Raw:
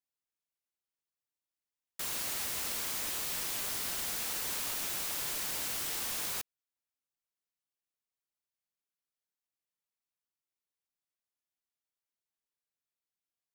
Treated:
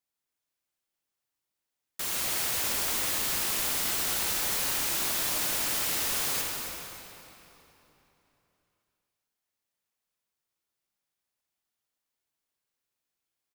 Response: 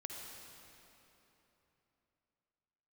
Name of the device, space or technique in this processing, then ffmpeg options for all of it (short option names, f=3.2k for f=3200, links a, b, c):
cave: -filter_complex "[0:a]aecho=1:1:271:0.266[a];[1:a]atrim=start_sample=2205[b];[a][b]afir=irnorm=-1:irlink=0,volume=9dB"